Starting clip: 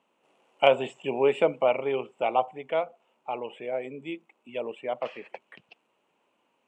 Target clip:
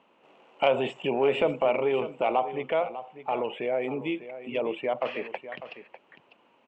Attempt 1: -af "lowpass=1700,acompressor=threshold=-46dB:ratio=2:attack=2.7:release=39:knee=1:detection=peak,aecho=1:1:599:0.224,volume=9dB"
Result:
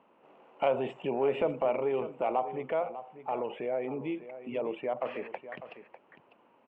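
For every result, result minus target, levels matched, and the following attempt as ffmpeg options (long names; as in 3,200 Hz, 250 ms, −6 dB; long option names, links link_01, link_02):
4,000 Hz band −7.0 dB; downward compressor: peak gain reduction +4 dB
-af "lowpass=3700,acompressor=threshold=-46dB:ratio=2:attack=2.7:release=39:knee=1:detection=peak,aecho=1:1:599:0.224,volume=9dB"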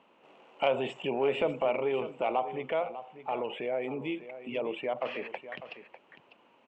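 downward compressor: peak gain reduction +4 dB
-af "lowpass=3700,acompressor=threshold=-37.5dB:ratio=2:attack=2.7:release=39:knee=1:detection=peak,aecho=1:1:599:0.224,volume=9dB"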